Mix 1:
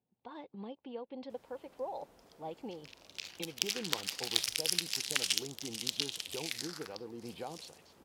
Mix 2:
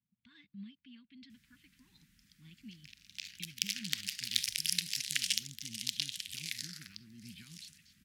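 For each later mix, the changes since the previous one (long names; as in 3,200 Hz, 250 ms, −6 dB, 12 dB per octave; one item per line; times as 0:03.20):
master: add Chebyshev band-stop filter 210–1,800 Hz, order 3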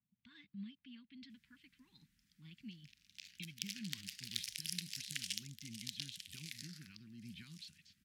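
background −9.5 dB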